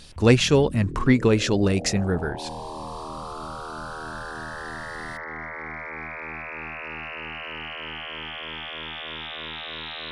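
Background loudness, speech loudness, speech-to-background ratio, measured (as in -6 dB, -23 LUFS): -34.5 LUFS, -21.0 LUFS, 13.5 dB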